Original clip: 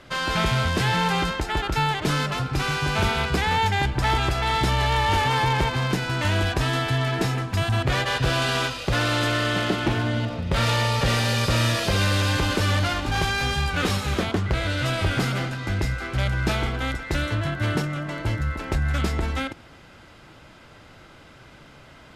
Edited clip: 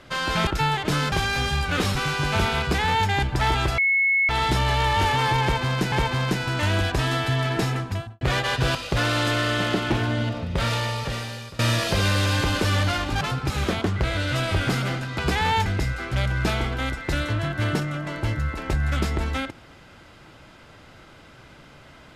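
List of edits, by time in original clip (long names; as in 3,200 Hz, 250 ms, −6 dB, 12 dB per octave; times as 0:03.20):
0:00.47–0:01.64: remove
0:02.29–0:02.58: swap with 0:13.17–0:14.00
0:03.24–0:03.72: duplicate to 0:15.68
0:04.41: insert tone 2,190 Hz −17 dBFS 0.51 s
0:05.54–0:06.04: repeat, 2 plays
0:07.40–0:07.83: fade out and dull
0:08.37–0:08.71: remove
0:10.32–0:11.55: fade out, to −22.5 dB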